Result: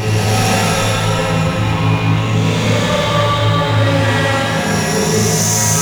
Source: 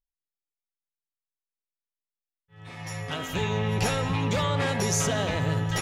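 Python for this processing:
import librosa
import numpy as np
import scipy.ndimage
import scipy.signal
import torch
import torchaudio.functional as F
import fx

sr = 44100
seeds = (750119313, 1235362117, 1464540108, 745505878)

y = fx.paulstretch(x, sr, seeds[0], factor=4.6, window_s=0.25, from_s=3.76)
y = fx.leveller(y, sr, passes=3)
y = fx.rev_schroeder(y, sr, rt60_s=1.7, comb_ms=25, drr_db=-2.0)
y = y * librosa.db_to_amplitude(-1.0)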